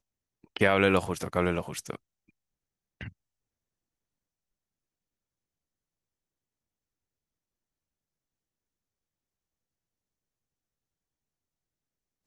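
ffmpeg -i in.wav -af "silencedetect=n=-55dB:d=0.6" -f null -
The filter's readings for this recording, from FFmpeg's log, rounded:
silence_start: 2.29
silence_end: 3.01 | silence_duration: 0.71
silence_start: 3.12
silence_end: 12.26 | silence_duration: 9.14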